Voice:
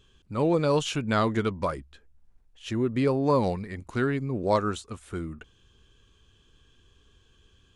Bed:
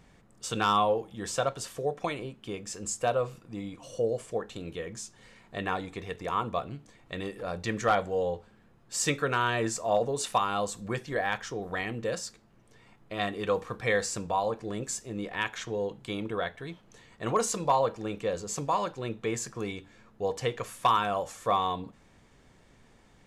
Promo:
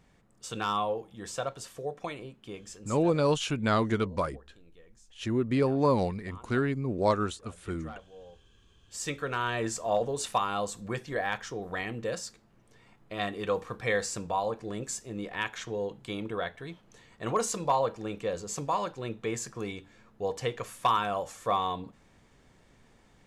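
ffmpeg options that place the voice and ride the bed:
ffmpeg -i stem1.wav -i stem2.wav -filter_complex "[0:a]adelay=2550,volume=-1.5dB[link_01];[1:a]volume=14.5dB,afade=type=out:start_time=2.57:duration=0.57:silence=0.158489,afade=type=in:start_time=8.42:duration=1.31:silence=0.105925[link_02];[link_01][link_02]amix=inputs=2:normalize=0" out.wav

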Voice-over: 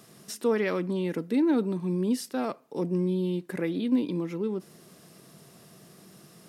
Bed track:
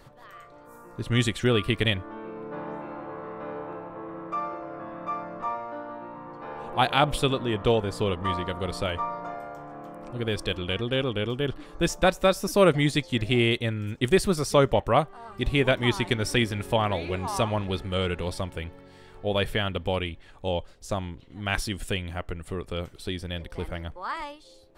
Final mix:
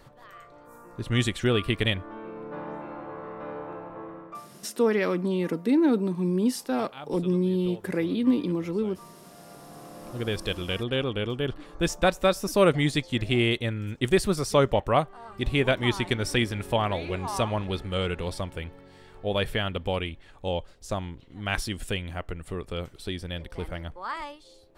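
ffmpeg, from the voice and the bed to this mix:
ffmpeg -i stem1.wav -i stem2.wav -filter_complex "[0:a]adelay=4350,volume=2.5dB[link_01];[1:a]volume=18.5dB,afade=type=out:start_time=4.02:duration=0.45:silence=0.105925,afade=type=in:start_time=9.3:duration=0.89:silence=0.105925[link_02];[link_01][link_02]amix=inputs=2:normalize=0" out.wav

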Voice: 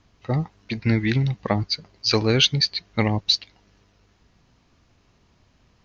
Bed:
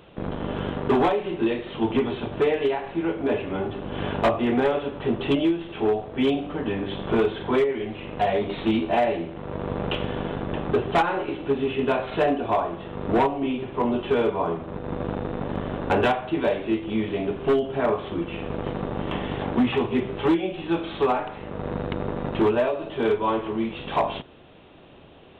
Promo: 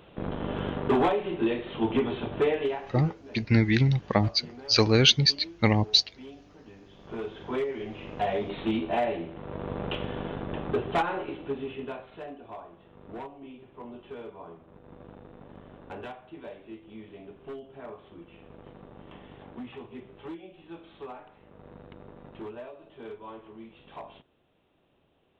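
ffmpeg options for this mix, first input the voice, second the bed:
ffmpeg -i stem1.wav -i stem2.wav -filter_complex "[0:a]adelay=2650,volume=-1dB[link_01];[1:a]volume=15dB,afade=type=out:start_time=2.46:duration=0.77:silence=0.0944061,afade=type=in:start_time=6.92:duration=1.04:silence=0.125893,afade=type=out:start_time=11.11:duration=1:silence=0.199526[link_02];[link_01][link_02]amix=inputs=2:normalize=0" out.wav

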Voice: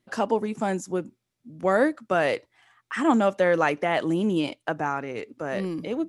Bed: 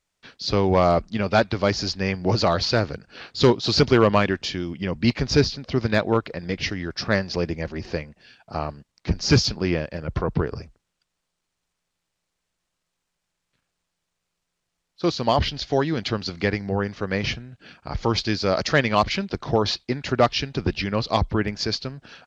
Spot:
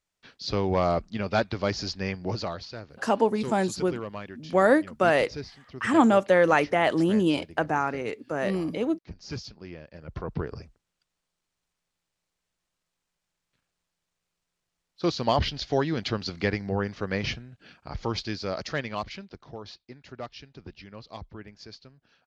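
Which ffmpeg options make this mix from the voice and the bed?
ffmpeg -i stem1.wav -i stem2.wav -filter_complex "[0:a]adelay=2900,volume=1.5dB[link_01];[1:a]volume=9.5dB,afade=type=out:start_time=2.07:duration=0.61:silence=0.223872,afade=type=in:start_time=9.77:duration=1.21:silence=0.16788,afade=type=out:start_time=16.99:duration=2.55:silence=0.149624[link_02];[link_01][link_02]amix=inputs=2:normalize=0" out.wav

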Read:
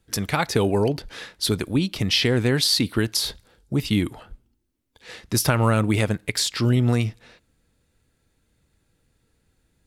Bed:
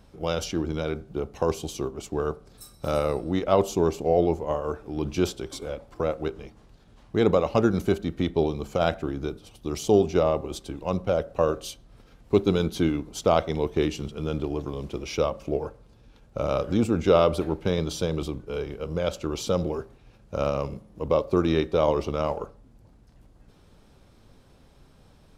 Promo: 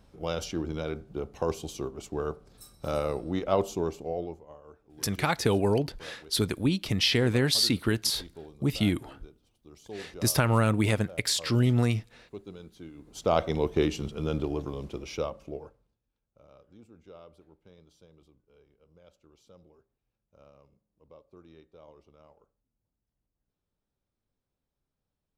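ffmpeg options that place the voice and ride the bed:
ffmpeg -i stem1.wav -i stem2.wav -filter_complex "[0:a]adelay=4900,volume=-4dB[link_01];[1:a]volume=16.5dB,afade=type=out:start_time=3.54:duration=0.93:silence=0.133352,afade=type=in:start_time=12.95:duration=0.53:silence=0.0891251,afade=type=out:start_time=14.37:duration=1.62:silence=0.0316228[link_02];[link_01][link_02]amix=inputs=2:normalize=0" out.wav

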